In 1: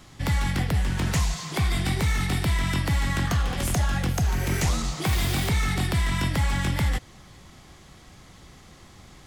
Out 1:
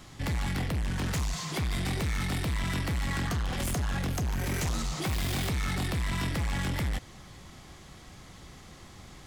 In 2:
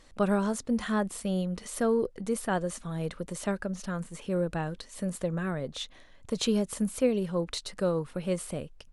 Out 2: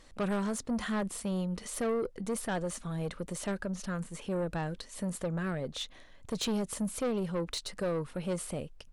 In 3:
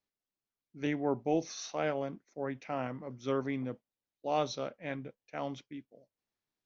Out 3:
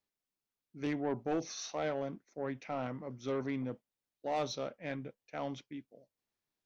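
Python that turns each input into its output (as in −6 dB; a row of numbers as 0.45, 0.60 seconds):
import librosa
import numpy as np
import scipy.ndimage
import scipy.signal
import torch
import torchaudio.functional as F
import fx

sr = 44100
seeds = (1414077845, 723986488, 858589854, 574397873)

y = 10.0 ** (-27.0 / 20.0) * np.tanh(x / 10.0 ** (-27.0 / 20.0))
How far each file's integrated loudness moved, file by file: −6.0, −3.5, −2.5 LU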